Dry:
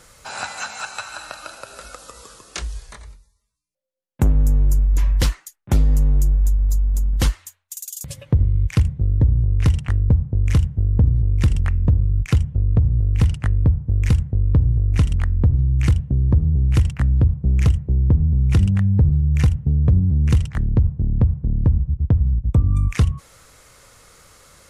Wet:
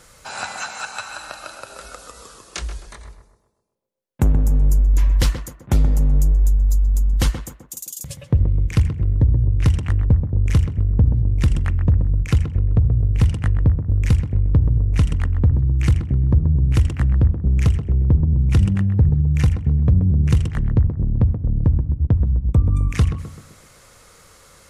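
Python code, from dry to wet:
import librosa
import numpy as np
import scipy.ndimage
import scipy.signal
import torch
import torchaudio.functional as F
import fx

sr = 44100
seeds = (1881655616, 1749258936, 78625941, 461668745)

y = fx.echo_tape(x, sr, ms=129, feedback_pct=60, wet_db=-5.5, lp_hz=1200.0, drive_db=8.0, wow_cents=7)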